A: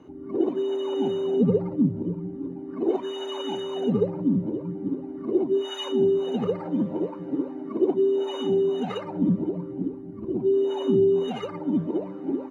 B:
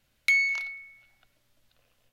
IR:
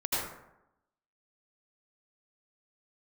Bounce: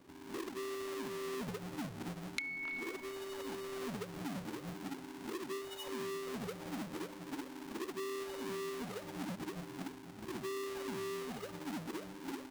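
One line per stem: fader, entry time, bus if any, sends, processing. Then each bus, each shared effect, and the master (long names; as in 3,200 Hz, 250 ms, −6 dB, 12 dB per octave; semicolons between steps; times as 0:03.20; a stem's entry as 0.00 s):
−16.0 dB, 0.00 s, no send, each half-wave held at its own peak; downward compressor, threshold −20 dBFS, peak gain reduction 6.5 dB
−0.5 dB, 2.10 s, no send, treble cut that deepens with the level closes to 1,400 Hz, closed at −23 dBFS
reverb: not used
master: downward compressor 3 to 1, threshold −40 dBFS, peak gain reduction 13 dB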